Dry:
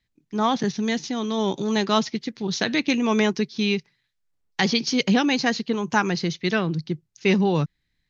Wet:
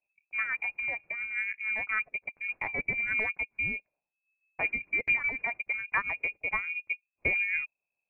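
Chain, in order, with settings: rotary cabinet horn 7 Hz; frequency inversion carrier 2.6 kHz; transient shaper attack +3 dB, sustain -6 dB; trim -8 dB

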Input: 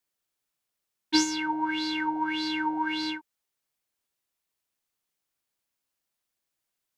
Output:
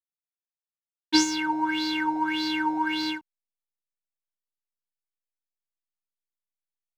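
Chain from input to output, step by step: hysteresis with a dead band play -48.5 dBFS; trim +2.5 dB

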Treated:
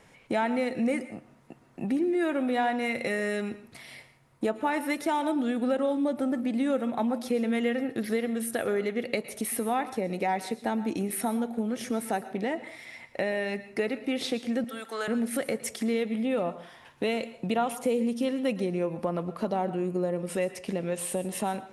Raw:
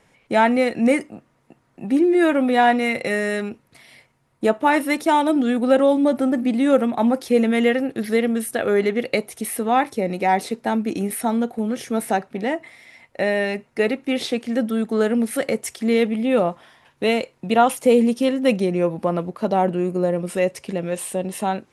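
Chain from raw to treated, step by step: 14.64–15.08 s: high-pass 980 Hz 12 dB/octave; compression 2.5:1, threshold -32 dBFS, peak gain reduction 14.5 dB; reverberation RT60 0.40 s, pre-delay 107 ms, DRR 13.5 dB; trim +1.5 dB

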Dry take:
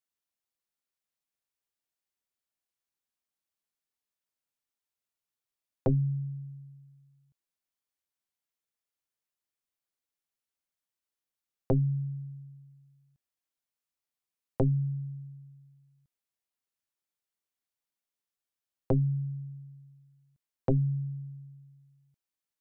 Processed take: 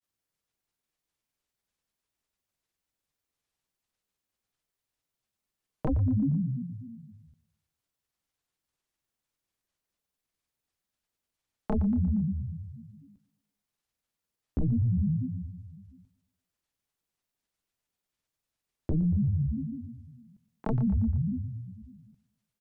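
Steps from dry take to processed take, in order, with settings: bass shelf 270 Hz +9.5 dB; compression, threshold -22 dBFS, peak gain reduction 8 dB; granulator 100 ms, spray 19 ms, pitch spread up and down by 12 st; on a send: feedback delay 117 ms, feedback 46%, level -18 dB; on the sum: peak limiter -26.5 dBFS, peak gain reduction 11.5 dB; trim +5.5 dB

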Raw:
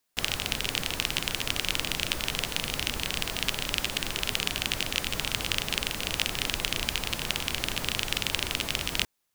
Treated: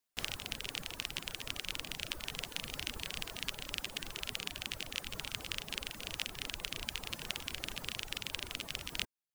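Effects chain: reverb removal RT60 1.5 s; gain riding 0.5 s; trim -9 dB

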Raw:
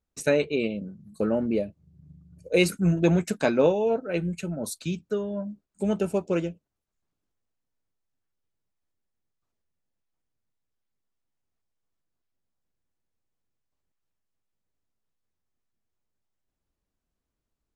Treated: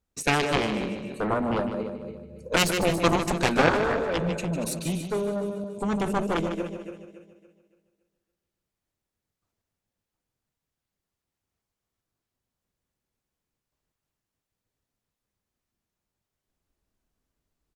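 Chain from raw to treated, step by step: backward echo that repeats 141 ms, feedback 59%, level -9.5 dB; Chebyshev shaper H 7 -8 dB, 8 -23 dB, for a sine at -7 dBFS; feedback delay 151 ms, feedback 40%, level -9.5 dB; trim -2 dB

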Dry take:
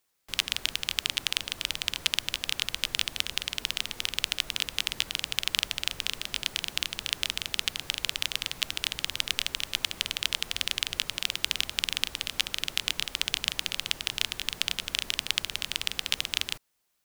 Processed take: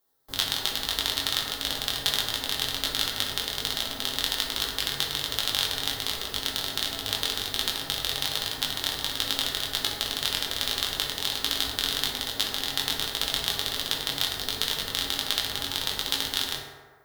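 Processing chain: FFT filter 180 Hz 0 dB, 530 Hz +3 dB, 1.8 kHz -4 dB, 2.5 kHz -16 dB, 3.6 kHz -2 dB, 7.4 kHz -7 dB, 16 kHz +4 dB; in parallel at -3.5 dB: bit crusher 6-bit; on the sum: chorus 1.3 Hz, delay 18 ms, depth 4.1 ms; reverberation RT60 1.6 s, pre-delay 4 ms, DRR -1.5 dB; trim +4 dB

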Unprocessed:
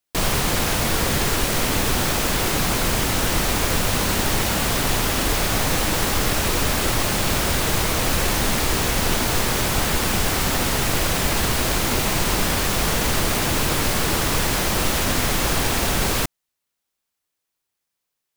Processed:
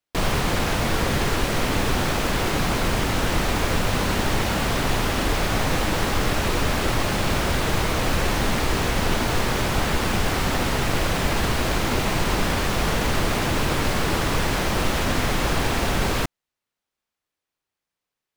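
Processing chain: treble shelf 5.5 kHz -12 dB

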